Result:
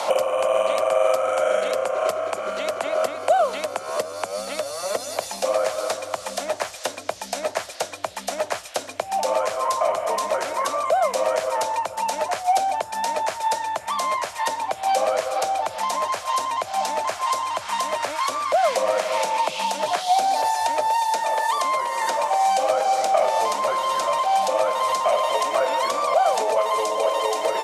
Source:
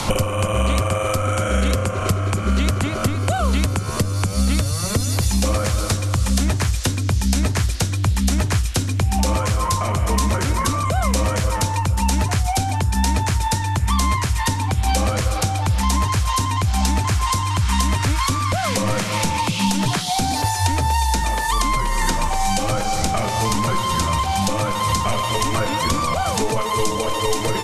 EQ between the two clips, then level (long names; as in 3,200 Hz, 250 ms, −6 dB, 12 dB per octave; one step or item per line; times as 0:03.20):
high-pass with resonance 620 Hz, resonance Q 4.9
high-shelf EQ 5,400 Hz −5 dB
−4.0 dB